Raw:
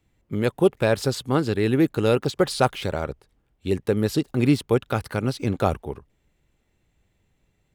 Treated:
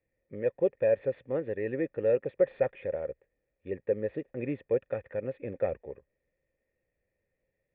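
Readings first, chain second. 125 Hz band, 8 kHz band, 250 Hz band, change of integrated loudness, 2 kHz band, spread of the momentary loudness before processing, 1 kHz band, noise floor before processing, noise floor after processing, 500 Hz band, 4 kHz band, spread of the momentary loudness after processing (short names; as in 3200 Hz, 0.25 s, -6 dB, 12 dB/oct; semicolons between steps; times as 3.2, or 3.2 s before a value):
-18.0 dB, under -40 dB, -15.0 dB, -8.0 dB, -12.5 dB, 11 LU, -18.0 dB, -70 dBFS, -83 dBFS, -4.5 dB, under -30 dB, 13 LU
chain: CVSD 64 kbps; vocal tract filter e; gain +2 dB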